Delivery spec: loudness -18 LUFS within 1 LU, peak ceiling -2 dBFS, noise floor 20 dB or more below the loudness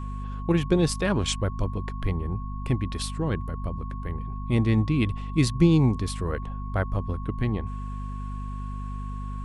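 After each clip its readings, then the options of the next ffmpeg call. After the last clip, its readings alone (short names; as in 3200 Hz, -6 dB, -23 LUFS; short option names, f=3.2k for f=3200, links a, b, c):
hum 50 Hz; harmonics up to 250 Hz; hum level -30 dBFS; steady tone 1100 Hz; tone level -41 dBFS; loudness -27.5 LUFS; peak -7.5 dBFS; loudness target -18.0 LUFS
-> -af "bandreject=f=50:t=h:w=6,bandreject=f=100:t=h:w=6,bandreject=f=150:t=h:w=6,bandreject=f=200:t=h:w=6,bandreject=f=250:t=h:w=6"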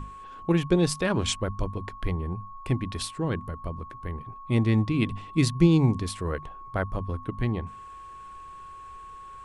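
hum none; steady tone 1100 Hz; tone level -41 dBFS
-> -af "bandreject=f=1.1k:w=30"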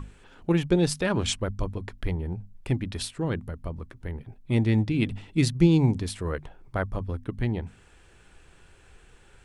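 steady tone none; loudness -27.5 LUFS; peak -8.0 dBFS; loudness target -18.0 LUFS
-> -af "volume=9.5dB,alimiter=limit=-2dB:level=0:latency=1"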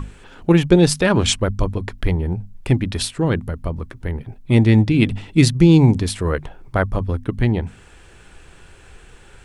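loudness -18.5 LUFS; peak -2.0 dBFS; noise floor -46 dBFS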